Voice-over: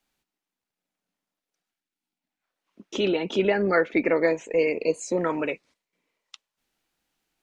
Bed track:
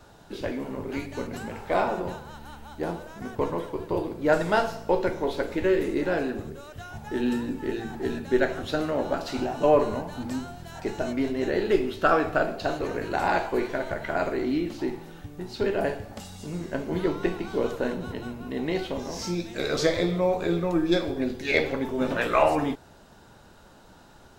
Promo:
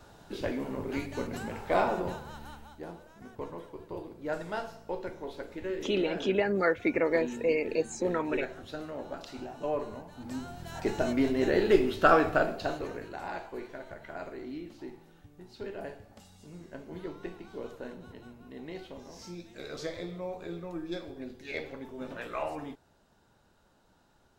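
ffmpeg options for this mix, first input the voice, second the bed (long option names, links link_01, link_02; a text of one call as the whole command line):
ffmpeg -i stem1.wav -i stem2.wav -filter_complex "[0:a]adelay=2900,volume=-5dB[link_01];[1:a]volume=10.5dB,afade=type=out:start_time=2.44:duration=0.39:silence=0.298538,afade=type=in:start_time=10.16:duration=0.6:silence=0.237137,afade=type=out:start_time=12.14:duration=1.01:silence=0.199526[link_02];[link_01][link_02]amix=inputs=2:normalize=0" out.wav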